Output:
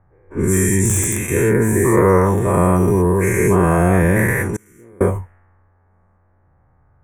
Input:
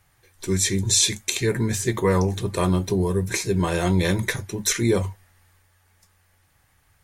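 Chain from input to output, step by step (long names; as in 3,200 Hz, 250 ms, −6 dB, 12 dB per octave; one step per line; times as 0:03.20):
every bin's largest magnitude spread in time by 240 ms
low-pass that shuts in the quiet parts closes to 960 Hz, open at −14.5 dBFS
in parallel at −9 dB: wrap-around overflow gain 2.5 dB
on the sum: Butterworth band-reject 4,300 Hz, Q 0.55
0:04.56–0:05.01: gate with flip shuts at −15 dBFS, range −32 dB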